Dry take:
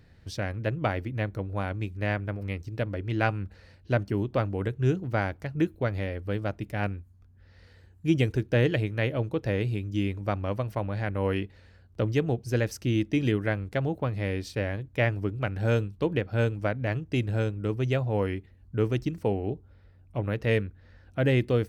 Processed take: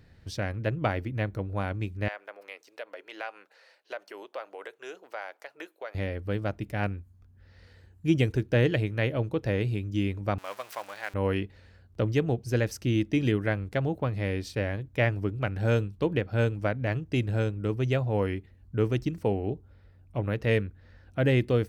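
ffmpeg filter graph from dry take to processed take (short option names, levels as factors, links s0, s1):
-filter_complex "[0:a]asettb=1/sr,asplit=3[s0][s1][s2];[s0]atrim=end=2.084[s3];[s1]atrim=start=2.08:end=5.95,asetpts=PTS-STARTPTS,afade=t=in:d=0.004:c=qsin,afade=t=out:st=3.866:d=0.004:c=qsin,highpass=f=530:w=0.5412,highpass=f=530:w=1.3066,acompressor=threshold=0.0126:ratio=2:attack=3.2:release=140:knee=1:detection=peak[s4];[s2]atrim=start=5.946[s5];[s3][s4]acrossfade=d=0.004:c1=hsin:c2=qsin[s6];[s6][s5]acrossfade=d=0.004:c1=qsin:c2=hsin,asettb=1/sr,asplit=3[s7][s8][s9];[s7]atrim=end=10.384[s10];[s8]atrim=start=10.38:end=11.14,asetpts=PTS-STARTPTS,afade=t=in:d=0.004:c=qsin,afade=t=out:st=0.756:d=0.004:c=qsin,aeval=exprs='val(0)+0.5*0.015*sgn(val(0))':c=same,highpass=880[s11];[s9]atrim=start=11.136[s12];[s10][s11]acrossfade=d=0.004:c1=hsin:c2=qsin[s13];[s13][s12]acrossfade=d=0.004:c1=qsin:c2=hsin"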